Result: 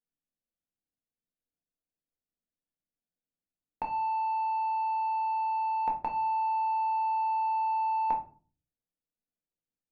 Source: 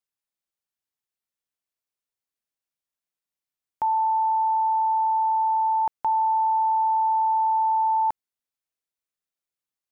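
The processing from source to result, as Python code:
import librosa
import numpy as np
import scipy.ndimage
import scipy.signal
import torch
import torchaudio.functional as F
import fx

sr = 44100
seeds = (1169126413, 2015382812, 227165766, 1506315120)

y = fx.wiener(x, sr, points=41)
y = fx.room_shoebox(y, sr, seeds[0], volume_m3=250.0, walls='furnished', distance_m=1.9)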